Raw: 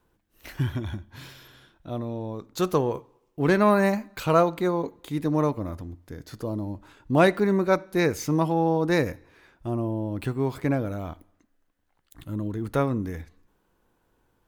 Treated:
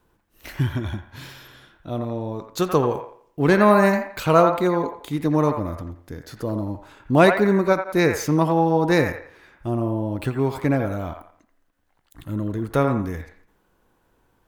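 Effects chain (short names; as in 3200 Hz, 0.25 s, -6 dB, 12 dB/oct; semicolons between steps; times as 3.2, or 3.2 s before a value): band-limited delay 85 ms, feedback 31%, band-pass 1200 Hz, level -4 dB; ending taper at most 260 dB/s; gain +4 dB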